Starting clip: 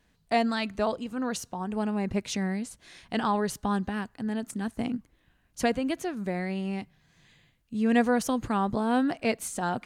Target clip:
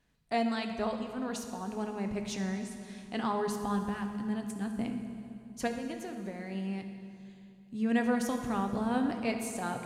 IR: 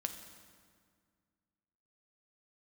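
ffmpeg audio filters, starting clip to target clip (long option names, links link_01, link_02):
-filter_complex "[0:a]asettb=1/sr,asplit=3[link_01][link_02][link_03];[link_01]atrim=end=5.674[link_04];[link_02]atrim=start=5.67:end=6.52,asetpts=PTS-STARTPTS,afade=type=in:duration=0.004:curve=qsin,afade=type=out:start_time=0.846:duration=0.004:curve=qsin,acompressor=threshold=-30dB:ratio=6[link_05];[link_03]atrim=start=6.516[link_06];[link_04][link_05]acrossfade=duration=0.004:curve1=hsin:curve2=qsin[link_07];[link_07][link_06]acrossfade=duration=0.004:curve1=qsin:curve2=hsin[link_08];[1:a]atrim=start_sample=2205,asetrate=30870,aresample=44100[link_09];[link_08][link_09]afir=irnorm=-1:irlink=0,volume=-7dB"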